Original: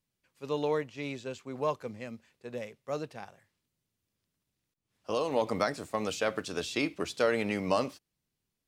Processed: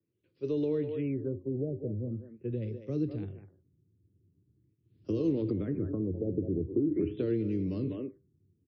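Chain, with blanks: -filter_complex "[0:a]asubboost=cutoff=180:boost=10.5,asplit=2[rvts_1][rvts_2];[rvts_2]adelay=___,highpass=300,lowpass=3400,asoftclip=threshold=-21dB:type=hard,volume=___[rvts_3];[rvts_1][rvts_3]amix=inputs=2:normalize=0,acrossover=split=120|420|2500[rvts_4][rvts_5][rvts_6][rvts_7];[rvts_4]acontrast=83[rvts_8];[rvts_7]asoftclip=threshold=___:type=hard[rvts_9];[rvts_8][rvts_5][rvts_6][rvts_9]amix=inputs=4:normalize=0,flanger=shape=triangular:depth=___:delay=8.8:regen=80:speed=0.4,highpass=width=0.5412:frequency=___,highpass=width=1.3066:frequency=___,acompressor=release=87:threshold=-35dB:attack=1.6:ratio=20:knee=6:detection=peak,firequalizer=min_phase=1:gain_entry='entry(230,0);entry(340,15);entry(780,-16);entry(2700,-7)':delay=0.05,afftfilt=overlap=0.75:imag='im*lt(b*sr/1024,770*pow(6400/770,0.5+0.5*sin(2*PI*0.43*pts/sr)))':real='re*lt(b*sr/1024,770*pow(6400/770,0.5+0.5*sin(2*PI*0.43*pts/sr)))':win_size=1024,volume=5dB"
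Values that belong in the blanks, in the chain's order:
200, -11dB, -36dB, 2.5, 91, 91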